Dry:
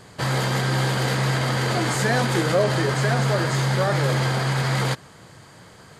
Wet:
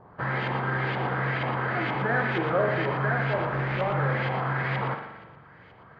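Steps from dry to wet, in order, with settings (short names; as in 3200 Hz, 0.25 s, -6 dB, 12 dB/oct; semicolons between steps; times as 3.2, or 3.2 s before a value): 3.33–3.94 switching dead time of 0.28 ms; running mean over 5 samples; LFO low-pass saw up 2.1 Hz 870–2800 Hz; thin delay 0.116 s, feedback 36%, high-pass 1600 Hz, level -7 dB; spring tank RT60 1.1 s, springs 43 ms, chirp 40 ms, DRR 6 dB; gain -7 dB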